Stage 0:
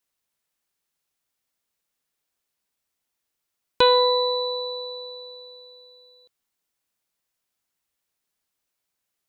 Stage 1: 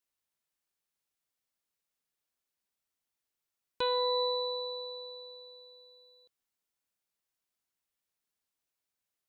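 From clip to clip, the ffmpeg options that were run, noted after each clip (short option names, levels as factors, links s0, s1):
-af "alimiter=limit=0.168:level=0:latency=1,volume=0.422"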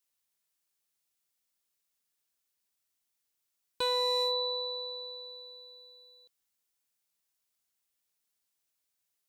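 -af "highshelf=f=3000:g=8,asoftclip=type=hard:threshold=0.0708,volume=0.891"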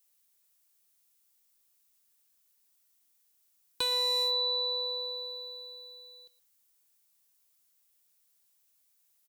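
-filter_complex "[0:a]acrossover=split=500|1900[s0][s1][s2];[s0]acompressor=threshold=0.00316:ratio=4[s3];[s1]acompressor=threshold=0.00562:ratio=4[s4];[s2]acompressor=threshold=0.02:ratio=4[s5];[s3][s4][s5]amix=inputs=3:normalize=0,crystalizer=i=1:c=0,aecho=1:1:117:0.119,volume=1.5"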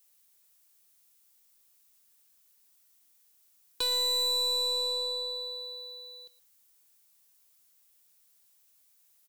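-af "aeval=exprs='(tanh(35.5*val(0)+0.2)-tanh(0.2))/35.5':c=same,volume=1.88"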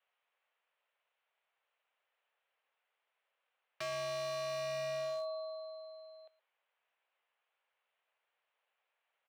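-af "highpass=f=350:t=q:w=0.5412,highpass=f=350:t=q:w=1.307,lowpass=f=2900:t=q:w=0.5176,lowpass=f=2900:t=q:w=0.7071,lowpass=f=2900:t=q:w=1.932,afreqshift=140,highshelf=f=2000:g=-8.5,aeval=exprs='0.0126*(abs(mod(val(0)/0.0126+3,4)-2)-1)':c=same,volume=1.58"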